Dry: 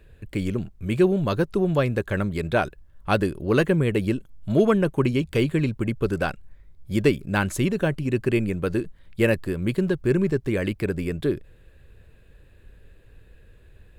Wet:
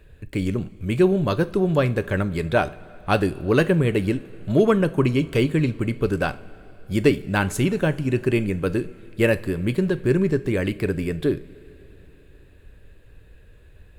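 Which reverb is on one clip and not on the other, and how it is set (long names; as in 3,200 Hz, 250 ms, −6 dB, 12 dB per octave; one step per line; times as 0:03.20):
coupled-rooms reverb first 0.33 s, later 3.9 s, from −19 dB, DRR 12 dB
level +1.5 dB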